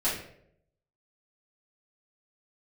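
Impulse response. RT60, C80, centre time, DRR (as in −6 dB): 0.70 s, 8.0 dB, 41 ms, −10.5 dB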